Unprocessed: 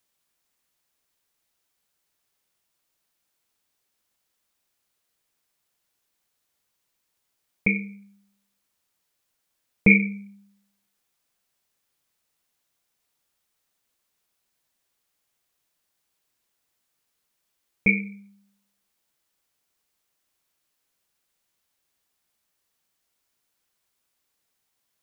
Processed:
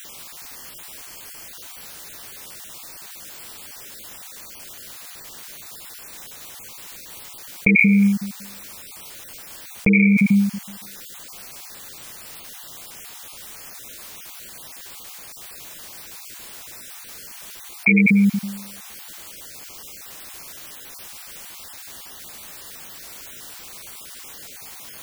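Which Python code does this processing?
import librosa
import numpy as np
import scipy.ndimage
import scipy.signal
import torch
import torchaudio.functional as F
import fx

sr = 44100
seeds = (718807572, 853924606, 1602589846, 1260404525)

y = fx.spec_dropout(x, sr, seeds[0], share_pct=20)
y = fx.env_flatten(y, sr, amount_pct=100)
y = y * 10.0 ** (-1.5 / 20.0)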